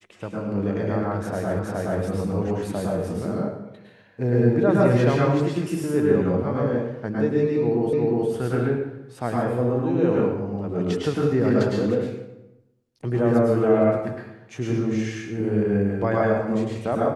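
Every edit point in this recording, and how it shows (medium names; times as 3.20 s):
1.59 s: repeat of the last 0.42 s
7.93 s: repeat of the last 0.36 s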